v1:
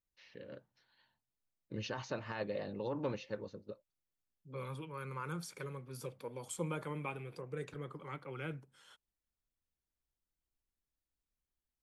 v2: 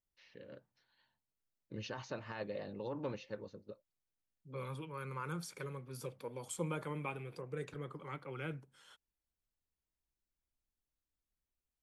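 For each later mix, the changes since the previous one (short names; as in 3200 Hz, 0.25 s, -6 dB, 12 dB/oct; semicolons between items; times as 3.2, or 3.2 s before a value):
first voice -3.0 dB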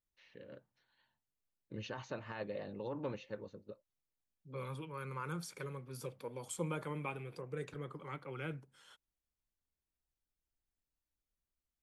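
first voice: add bell 5100 Hz -8 dB 0.4 oct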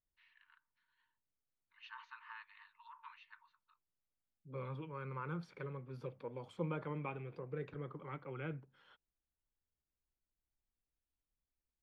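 first voice: add brick-wall FIR high-pass 890 Hz; master: add air absorption 340 m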